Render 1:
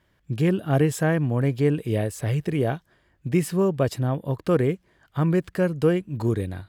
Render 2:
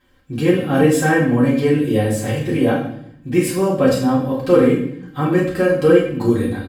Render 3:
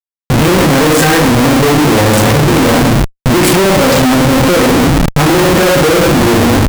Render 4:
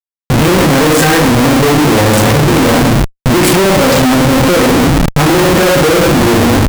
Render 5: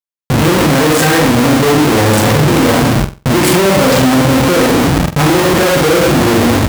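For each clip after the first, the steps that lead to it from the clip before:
comb filter 3.8 ms, depth 64%; convolution reverb RT60 0.65 s, pre-delay 3 ms, DRR −6.5 dB
comparator with hysteresis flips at −30.5 dBFS; level +8.5 dB
no processing that can be heard
high-pass filter 49 Hz; on a send: flutter between parallel walls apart 7.9 metres, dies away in 0.3 s; on the sum: level −2 dB

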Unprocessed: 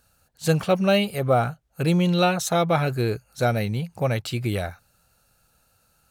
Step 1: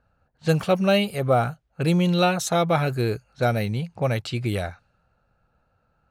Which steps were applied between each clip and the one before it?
low-pass that shuts in the quiet parts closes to 1,500 Hz, open at −20 dBFS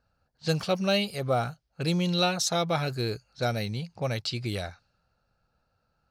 parametric band 4,900 Hz +14 dB 0.8 octaves
level −6.5 dB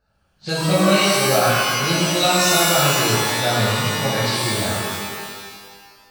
reverb with rising layers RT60 1.6 s, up +12 semitones, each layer −2 dB, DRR −8 dB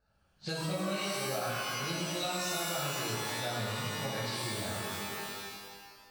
downward compressor 3 to 1, threshold −29 dBFS, peak gain reduction 13.5 dB
level −6.5 dB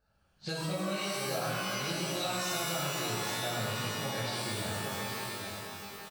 single-tap delay 818 ms −6.5 dB

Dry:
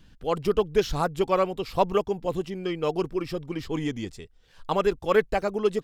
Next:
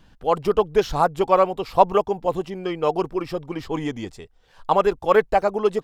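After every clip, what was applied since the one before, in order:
parametric band 820 Hz +9.5 dB 1.5 octaves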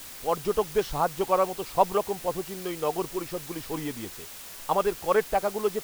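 bit-depth reduction 6 bits, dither triangular
level −6.5 dB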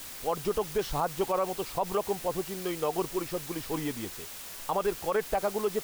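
brickwall limiter −18.5 dBFS, peak gain reduction 10.5 dB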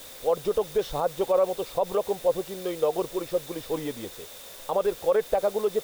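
hollow resonant body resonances 520/3,600 Hz, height 13 dB, ringing for 20 ms
level −2.5 dB

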